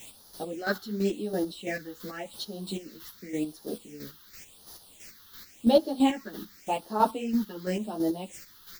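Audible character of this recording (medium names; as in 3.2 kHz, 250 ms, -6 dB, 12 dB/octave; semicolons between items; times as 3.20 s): a quantiser's noise floor 8-bit, dither triangular; phasing stages 6, 0.9 Hz, lowest notch 620–2400 Hz; chopped level 3 Hz, depth 60%, duty 30%; a shimmering, thickened sound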